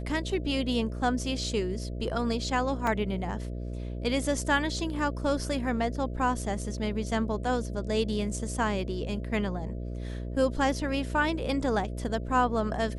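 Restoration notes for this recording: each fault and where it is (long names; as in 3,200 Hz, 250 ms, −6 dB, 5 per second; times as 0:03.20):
mains buzz 60 Hz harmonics 11 −35 dBFS
0:02.87: drop-out 2.3 ms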